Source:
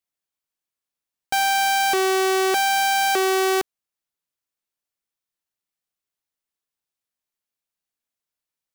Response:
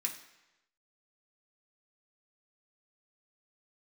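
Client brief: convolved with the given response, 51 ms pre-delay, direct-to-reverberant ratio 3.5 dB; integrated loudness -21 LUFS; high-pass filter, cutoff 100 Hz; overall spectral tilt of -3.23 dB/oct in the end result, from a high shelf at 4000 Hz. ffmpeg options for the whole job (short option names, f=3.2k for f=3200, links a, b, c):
-filter_complex "[0:a]highpass=100,highshelf=f=4k:g=7,asplit=2[a][b];[1:a]atrim=start_sample=2205,adelay=51[c];[b][c]afir=irnorm=-1:irlink=0,volume=-5dB[d];[a][d]amix=inputs=2:normalize=0,volume=-5dB"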